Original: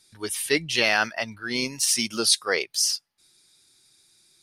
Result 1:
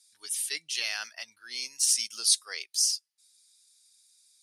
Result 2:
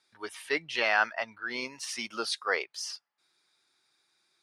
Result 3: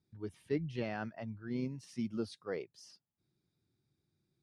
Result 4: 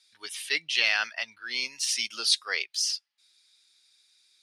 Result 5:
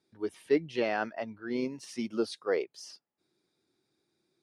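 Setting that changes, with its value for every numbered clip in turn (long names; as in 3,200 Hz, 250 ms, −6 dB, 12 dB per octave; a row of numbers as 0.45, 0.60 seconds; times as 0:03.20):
resonant band-pass, frequency: 8,000, 1,100, 120, 3,100, 360 Hertz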